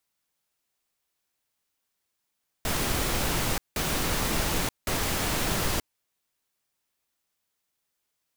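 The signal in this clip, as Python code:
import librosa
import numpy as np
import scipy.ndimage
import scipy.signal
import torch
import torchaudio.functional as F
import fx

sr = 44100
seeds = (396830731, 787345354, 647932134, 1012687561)

y = fx.noise_burst(sr, seeds[0], colour='pink', on_s=0.93, off_s=0.18, bursts=3, level_db=-27.0)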